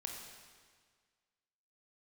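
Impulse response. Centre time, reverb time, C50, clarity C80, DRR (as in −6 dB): 64 ms, 1.7 s, 2.5 dB, 4.0 dB, 0.5 dB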